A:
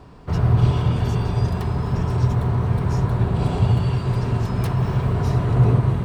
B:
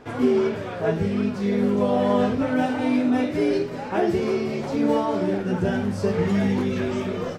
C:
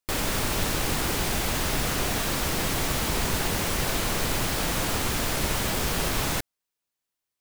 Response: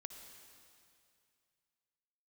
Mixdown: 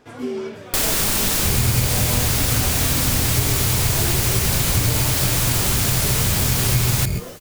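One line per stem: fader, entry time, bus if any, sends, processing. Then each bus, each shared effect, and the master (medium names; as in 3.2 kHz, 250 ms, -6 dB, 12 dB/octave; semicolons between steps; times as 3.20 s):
-9.5 dB, 1.15 s, no send, tilt EQ -3.5 dB/octave; sample-and-hold 19×
-7.5 dB, 0.00 s, no send, none
+2.5 dB, 0.65 s, send -7.5 dB, none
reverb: on, RT60 2.4 s, pre-delay 53 ms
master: treble shelf 3.8 kHz +11 dB; compression 3:1, threshold -16 dBFS, peak gain reduction 7 dB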